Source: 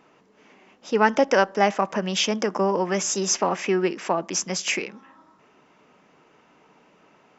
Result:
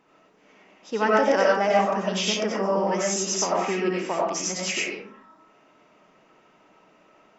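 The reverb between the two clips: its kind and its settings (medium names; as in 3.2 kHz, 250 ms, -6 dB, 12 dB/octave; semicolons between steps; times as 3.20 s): algorithmic reverb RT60 0.49 s, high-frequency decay 0.55×, pre-delay 50 ms, DRR -4.5 dB; trim -6 dB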